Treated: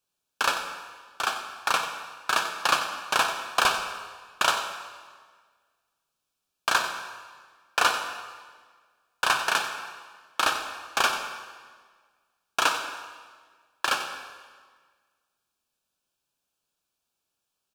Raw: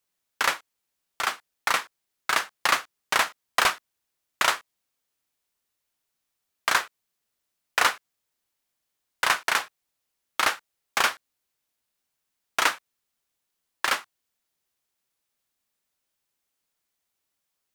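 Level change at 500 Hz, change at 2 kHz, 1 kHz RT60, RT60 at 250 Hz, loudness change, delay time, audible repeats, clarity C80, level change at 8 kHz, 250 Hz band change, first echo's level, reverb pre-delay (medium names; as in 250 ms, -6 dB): +1.5 dB, -1.5 dB, 1.6 s, 1.7 s, -1.0 dB, 92 ms, 1, 7.0 dB, -1.0 dB, +1.0 dB, -11.5 dB, 37 ms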